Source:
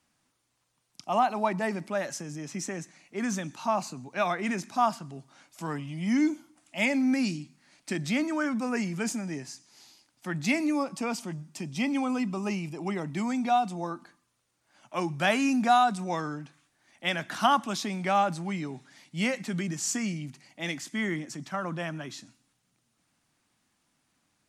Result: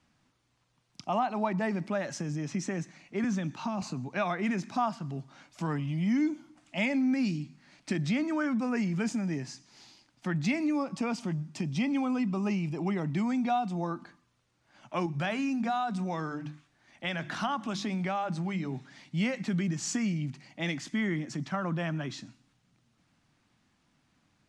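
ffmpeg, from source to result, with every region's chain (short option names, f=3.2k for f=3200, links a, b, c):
-filter_complex "[0:a]asettb=1/sr,asplit=3[a][b][c];[a]atrim=end=3.244[d];[b]atrim=start=3.24:end=3.82,asetpts=PTS-STARTPTS,afade=t=in:d=0.004:c=qsin,afade=t=out:st=0.576:d=0.004:c=qsin,highshelf=f=7k:g=-6.5,acrossover=split=340|3000[e][f][g];[f]acompressor=threshold=-34dB:ratio=6:attack=3.2:release=140:knee=2.83:detection=peak[h];[e][h][g]amix=inputs=3:normalize=0[i];[c]atrim=start=3.816[j];[d][i]acrossfade=d=0.004:c1=hsin:c2=qsin[k];[k][j]acrossfade=d=0.004:c1=qsin:c2=hsin,asettb=1/sr,asplit=3[l][m][n];[l]atrim=end=15.064[o];[m]atrim=start=15.06:end=18.73,asetpts=PTS-STARTPTS,afade=t=in:d=0.004:c=qsin,afade=t=out:st=3.666:d=0.004:c=qsin,bandreject=f=50:t=h:w=6,bandreject=f=100:t=h:w=6,bandreject=f=150:t=h:w=6,bandreject=f=200:t=h:w=6,bandreject=f=250:t=h:w=6,bandreject=f=300:t=h:w=6,bandreject=f=350:t=h:w=6,acompressor=threshold=-37dB:ratio=1.5:attack=3.2:release=140:knee=1:detection=peak[p];[n]atrim=start=18.726[q];[o][p]acrossfade=d=0.004:c1=hsin:c2=qsin[r];[r][q]acrossfade=d=0.004:c1=qsin:c2=hsin,lowpass=6.1k,bass=f=250:g=6,treble=f=4k:g=-2,acompressor=threshold=-33dB:ratio=2,volume=2.5dB"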